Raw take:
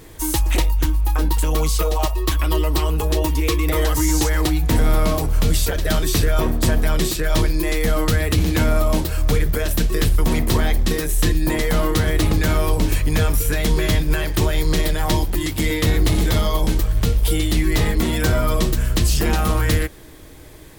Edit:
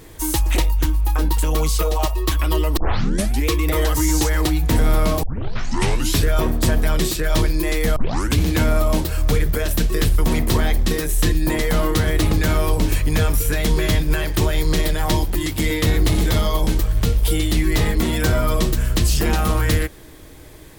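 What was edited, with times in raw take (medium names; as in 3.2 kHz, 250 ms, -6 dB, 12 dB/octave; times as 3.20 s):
2.77 s: tape start 0.70 s
5.23 s: tape start 1.00 s
7.96 s: tape start 0.42 s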